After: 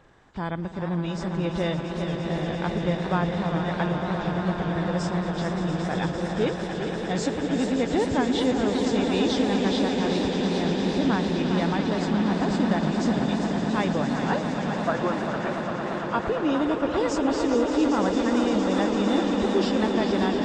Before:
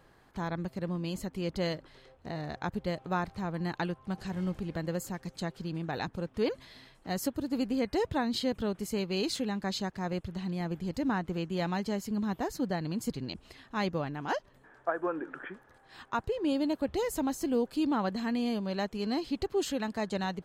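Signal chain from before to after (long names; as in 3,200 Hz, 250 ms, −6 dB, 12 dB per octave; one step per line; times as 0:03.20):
hearing-aid frequency compression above 2,600 Hz 1.5 to 1
echo that builds up and dies away 114 ms, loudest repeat 8, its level −11 dB
feedback echo with a swinging delay time 401 ms, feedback 55%, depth 172 cents, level −8 dB
level +4.5 dB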